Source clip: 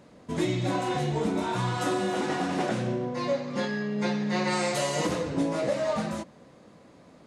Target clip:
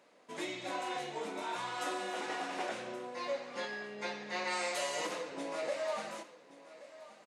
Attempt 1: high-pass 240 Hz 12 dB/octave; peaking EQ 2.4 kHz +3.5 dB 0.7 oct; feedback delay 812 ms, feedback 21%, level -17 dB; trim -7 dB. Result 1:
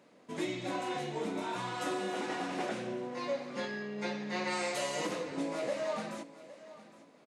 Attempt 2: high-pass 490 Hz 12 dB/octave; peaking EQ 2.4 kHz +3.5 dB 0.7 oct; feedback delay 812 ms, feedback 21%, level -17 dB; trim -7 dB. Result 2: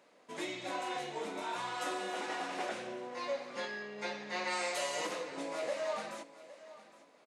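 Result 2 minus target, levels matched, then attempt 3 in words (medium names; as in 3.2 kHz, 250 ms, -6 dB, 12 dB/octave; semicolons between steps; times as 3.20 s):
echo 313 ms early
high-pass 490 Hz 12 dB/octave; peaking EQ 2.4 kHz +3.5 dB 0.7 oct; feedback delay 1125 ms, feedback 21%, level -17 dB; trim -7 dB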